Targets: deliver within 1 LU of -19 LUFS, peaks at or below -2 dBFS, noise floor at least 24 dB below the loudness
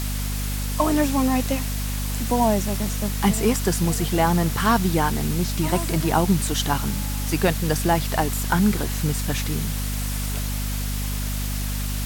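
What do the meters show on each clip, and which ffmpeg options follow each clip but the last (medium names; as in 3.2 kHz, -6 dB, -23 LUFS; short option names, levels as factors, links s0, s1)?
hum 50 Hz; highest harmonic 250 Hz; hum level -24 dBFS; noise floor -26 dBFS; noise floor target -47 dBFS; loudness -23.0 LUFS; peak level -7.0 dBFS; loudness target -19.0 LUFS
-> -af "bandreject=f=50:t=h:w=6,bandreject=f=100:t=h:w=6,bandreject=f=150:t=h:w=6,bandreject=f=200:t=h:w=6,bandreject=f=250:t=h:w=6"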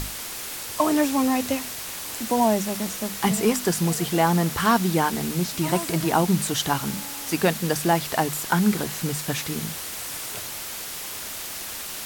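hum not found; noise floor -34 dBFS; noise floor target -49 dBFS
-> -af "afftdn=nr=15:nf=-34"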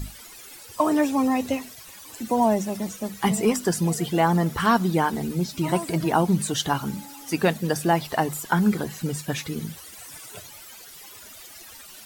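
noise floor -44 dBFS; noise floor target -48 dBFS
-> -af "afftdn=nr=6:nf=-44"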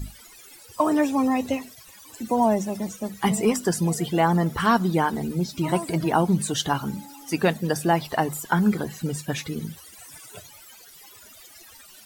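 noise floor -48 dBFS; loudness -24.0 LUFS; peak level -8.5 dBFS; loudness target -19.0 LUFS
-> -af "volume=1.78"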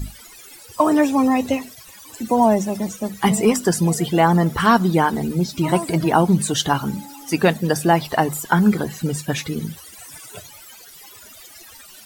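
loudness -19.0 LUFS; peak level -3.5 dBFS; noise floor -43 dBFS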